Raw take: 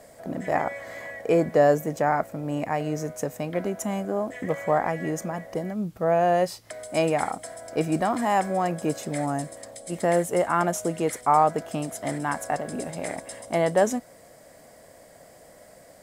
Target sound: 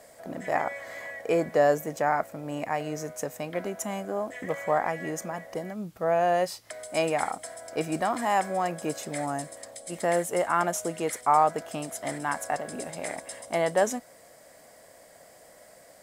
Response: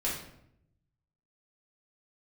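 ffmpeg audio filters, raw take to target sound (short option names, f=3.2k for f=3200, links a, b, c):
-af "lowshelf=f=420:g=-8.5"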